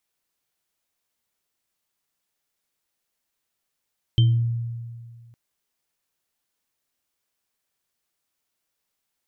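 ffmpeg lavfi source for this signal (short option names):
-f lavfi -i "aevalsrc='0.251*pow(10,-3*t/1.95)*sin(2*PI*117*t)+0.0282*pow(10,-3*t/0.57)*sin(2*PI*325*t)+0.0794*pow(10,-3*t/0.25)*sin(2*PI*3120*t)':d=1.16:s=44100"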